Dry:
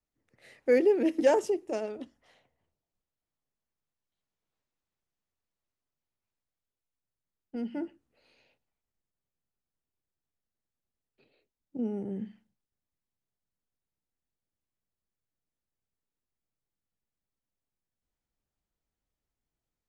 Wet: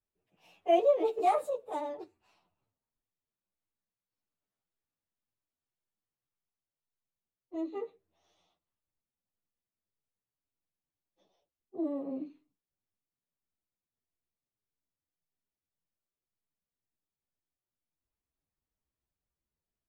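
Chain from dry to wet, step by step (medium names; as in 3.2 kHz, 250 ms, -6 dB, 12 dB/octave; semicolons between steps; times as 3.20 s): frequency-domain pitch shifter +5.5 st; treble shelf 2.9 kHz -6.5 dB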